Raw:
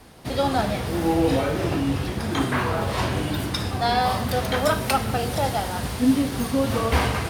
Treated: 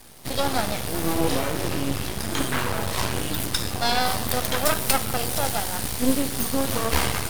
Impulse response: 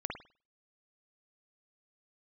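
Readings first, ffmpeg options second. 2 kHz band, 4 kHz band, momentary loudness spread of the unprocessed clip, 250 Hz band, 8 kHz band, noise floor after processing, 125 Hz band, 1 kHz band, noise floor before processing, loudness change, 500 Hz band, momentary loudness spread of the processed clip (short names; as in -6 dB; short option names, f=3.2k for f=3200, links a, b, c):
0.0 dB, +2.5 dB, 5 LU, -4.0 dB, +8.0 dB, -30 dBFS, -4.5 dB, -3.0 dB, -30 dBFS, -1.0 dB, -3.5 dB, 5 LU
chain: -af "crystalizer=i=2.5:c=0,aeval=exprs='max(val(0),0)':c=same,volume=1dB"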